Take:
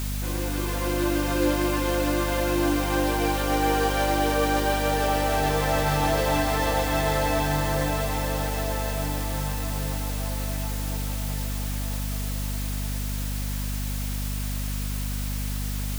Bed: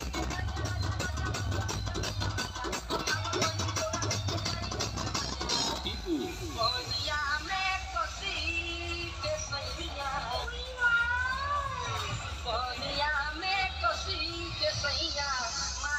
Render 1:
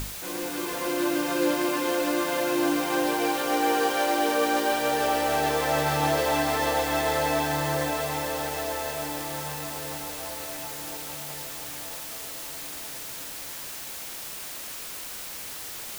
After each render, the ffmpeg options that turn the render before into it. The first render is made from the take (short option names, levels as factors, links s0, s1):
-af "bandreject=f=50:t=h:w=6,bandreject=f=100:t=h:w=6,bandreject=f=150:t=h:w=6,bandreject=f=200:t=h:w=6,bandreject=f=250:t=h:w=6,bandreject=f=300:t=h:w=6"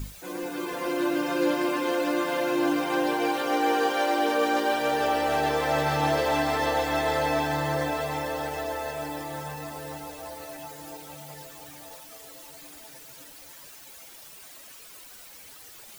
-af "afftdn=nr=12:nf=-38"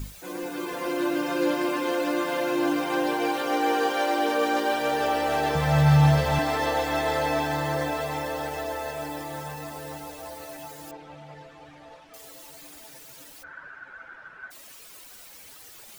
-filter_complex "[0:a]asettb=1/sr,asplit=3[s0][s1][s2];[s0]atrim=end=5.554[s3];[s1]atrim=start=5.55:end=6.39,asetpts=PTS-STARTPTS,afade=t=in:d=0.004:c=qsin,afade=t=out:st=0.836:d=0.004:c=qsin,lowshelf=f=230:t=q:w=3:g=10[s4];[s2]atrim=start=6.386[s5];[s3][s4]acrossfade=d=0.004:c1=hsin:c2=qsin[s6];[s6][s5]acrossfade=d=0.004:c1=qsin:c2=hsin,asettb=1/sr,asplit=3[s7][s8][s9];[s7]atrim=end=10.914[s10];[s8]atrim=start=10.91:end=12.14,asetpts=PTS-STARTPTS,afade=t=in:d=0.004:c=qsin,afade=t=out:st=1.226:d=0.004:c=qsin,lowpass=2600[s11];[s9]atrim=start=12.136[s12];[s10][s11]acrossfade=d=0.004:c1=hsin:c2=qsin[s13];[s13][s12]acrossfade=d=0.004:c1=qsin:c2=hsin,asplit=3[s14][s15][s16];[s14]afade=t=out:st=13.42:d=0.02[s17];[s15]lowpass=f=1500:t=q:w=16,afade=t=in:st=13.42:d=0.02,afade=t=out:st=14.5:d=0.02[s18];[s16]afade=t=in:st=14.5:d=0.02[s19];[s17][s18][s19]amix=inputs=3:normalize=0"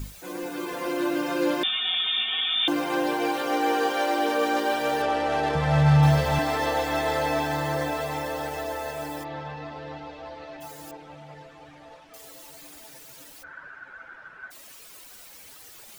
-filter_complex "[0:a]asettb=1/sr,asplit=3[s0][s1][s2];[s0]atrim=end=1.634[s3];[s1]atrim=start=1.63:end=2.68,asetpts=PTS-STARTPTS,afade=t=in:d=0.004:c=qsin,afade=t=out:st=1.046:d=0.004:c=qsin,lowpass=f=3300:t=q:w=0.5098,lowpass=f=3300:t=q:w=0.6013,lowpass=f=3300:t=q:w=0.9,lowpass=f=3300:t=q:w=2.563,afreqshift=-3900[s4];[s2]atrim=start=2.676[s5];[s3][s4]acrossfade=d=0.004:c1=hsin:c2=qsin[s6];[s6][s5]acrossfade=d=0.004:c1=qsin:c2=hsin,asettb=1/sr,asplit=3[s7][s8][s9];[s7]atrim=end=5.024[s10];[s8]atrim=start=5.02:end=6.03,asetpts=PTS-STARTPTS,afade=t=in:d=0.004:c=qsin,afade=t=out:st=1.006:d=0.004:c=qsin,adynamicsmooth=sensitivity=4.5:basefreq=3300[s11];[s9]atrim=start=6.026[s12];[s10][s11]acrossfade=d=0.004:c1=hsin:c2=qsin[s13];[s13][s12]acrossfade=d=0.004:c1=qsin:c2=hsin,asplit=3[s14][s15][s16];[s14]afade=t=out:st=9.23:d=0.02[s17];[s15]lowpass=f=4100:w=0.5412,lowpass=f=4100:w=1.3066,afade=t=in:st=9.23:d=0.02,afade=t=out:st=10.6:d=0.02[s18];[s16]afade=t=in:st=10.6:d=0.02[s19];[s17][s18][s19]amix=inputs=3:normalize=0"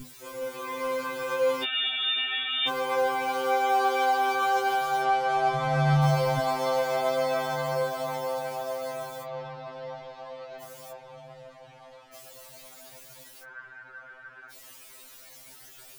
-af "afftfilt=real='re*2.45*eq(mod(b,6),0)':imag='im*2.45*eq(mod(b,6),0)':win_size=2048:overlap=0.75"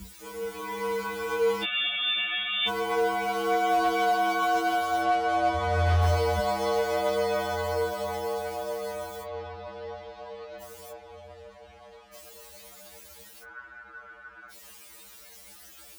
-af "volume=7.5,asoftclip=hard,volume=0.133,afreqshift=-60"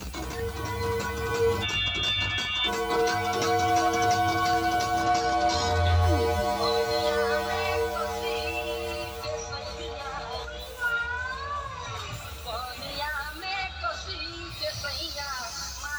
-filter_complex "[1:a]volume=0.841[s0];[0:a][s0]amix=inputs=2:normalize=0"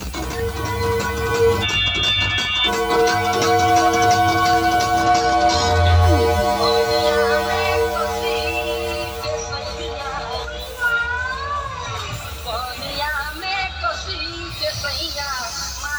-af "volume=2.66"